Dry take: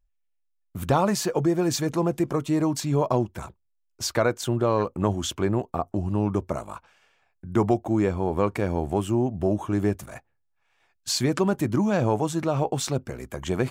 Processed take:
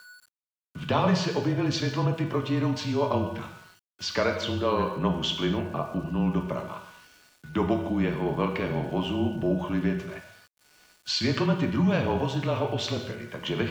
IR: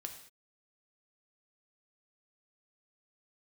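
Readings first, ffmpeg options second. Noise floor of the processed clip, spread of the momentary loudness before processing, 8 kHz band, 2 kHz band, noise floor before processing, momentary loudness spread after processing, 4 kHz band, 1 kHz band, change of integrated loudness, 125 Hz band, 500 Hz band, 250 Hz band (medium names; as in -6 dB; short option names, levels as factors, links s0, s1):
under -85 dBFS, 10 LU, -10.0 dB, +2.0 dB, -72 dBFS, 10 LU, +2.5 dB, -2.5 dB, -2.0 dB, -1.5 dB, -3.5 dB, -2.0 dB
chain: -filter_complex "[0:a]aeval=exprs='val(0)+0.00708*sin(2*PI*1500*n/s)':c=same,highpass=f=150:w=0.5412,highpass=f=150:w=1.3066,equalizer=f=320:t=q:w=4:g=-9,equalizer=f=510:t=q:w=4:g=-5,equalizer=f=790:t=q:w=4:g=-8,equalizer=f=1400:t=q:w=4:g=-4,equalizer=f=3000:t=q:w=4:g=7,lowpass=f=4700:w=0.5412,lowpass=f=4700:w=1.3066,afreqshift=-25[s0];[1:a]atrim=start_sample=2205,asetrate=35721,aresample=44100[s1];[s0][s1]afir=irnorm=-1:irlink=0,aeval=exprs='val(0)*gte(abs(val(0)),0.00224)':c=same,volume=1.58"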